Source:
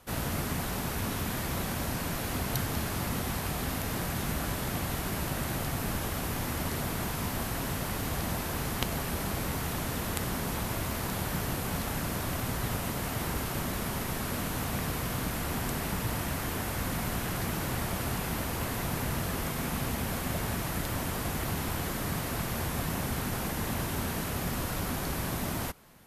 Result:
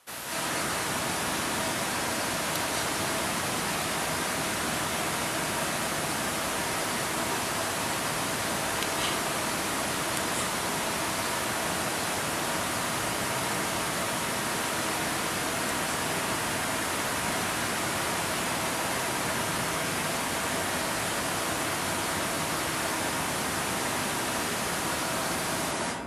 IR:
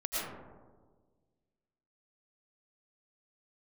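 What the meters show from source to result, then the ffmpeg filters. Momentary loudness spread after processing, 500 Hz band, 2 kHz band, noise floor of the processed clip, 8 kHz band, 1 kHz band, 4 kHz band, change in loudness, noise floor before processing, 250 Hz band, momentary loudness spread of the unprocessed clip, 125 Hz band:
1 LU, +5.0 dB, +7.5 dB, -31 dBFS, +7.5 dB, +6.5 dB, +8.0 dB, +4.0 dB, -35 dBFS, 0.0 dB, 1 LU, -6.0 dB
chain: -filter_complex "[0:a]highpass=f=1100:p=1[s0];[1:a]atrim=start_sample=2205,asetrate=22050,aresample=44100[s1];[s0][s1]afir=irnorm=-1:irlink=0"

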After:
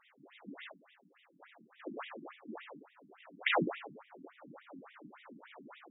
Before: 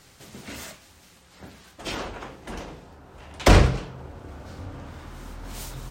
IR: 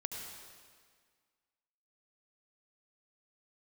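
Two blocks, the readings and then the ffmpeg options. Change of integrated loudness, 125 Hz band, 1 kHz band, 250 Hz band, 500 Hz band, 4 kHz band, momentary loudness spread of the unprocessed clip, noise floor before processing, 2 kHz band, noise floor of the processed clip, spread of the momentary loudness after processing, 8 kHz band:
-14.5 dB, -26.0 dB, -11.5 dB, -13.5 dB, -13.5 dB, -12.0 dB, 23 LU, -54 dBFS, -7.5 dB, -69 dBFS, 23 LU, under -40 dB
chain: -filter_complex "[1:a]atrim=start_sample=2205,atrim=end_sample=6174,asetrate=52920,aresample=44100[s0];[0:a][s0]afir=irnorm=-1:irlink=0,afftfilt=real='re*between(b*sr/1024,220*pow(2700/220,0.5+0.5*sin(2*PI*3.5*pts/sr))/1.41,220*pow(2700/220,0.5+0.5*sin(2*PI*3.5*pts/sr))*1.41)':imag='im*between(b*sr/1024,220*pow(2700/220,0.5+0.5*sin(2*PI*3.5*pts/sr))/1.41,220*pow(2700/220,0.5+0.5*sin(2*PI*3.5*pts/sr))*1.41)':win_size=1024:overlap=0.75"

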